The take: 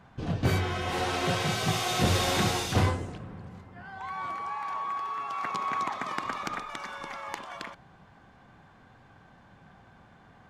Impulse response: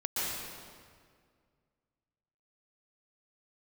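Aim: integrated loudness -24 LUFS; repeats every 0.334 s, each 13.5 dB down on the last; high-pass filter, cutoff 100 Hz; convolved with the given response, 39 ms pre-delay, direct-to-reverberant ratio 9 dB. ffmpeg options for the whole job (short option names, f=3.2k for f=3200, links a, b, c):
-filter_complex "[0:a]highpass=100,aecho=1:1:334|668:0.211|0.0444,asplit=2[a][b];[1:a]atrim=start_sample=2205,adelay=39[c];[b][c]afir=irnorm=-1:irlink=0,volume=-16dB[d];[a][d]amix=inputs=2:normalize=0,volume=6dB"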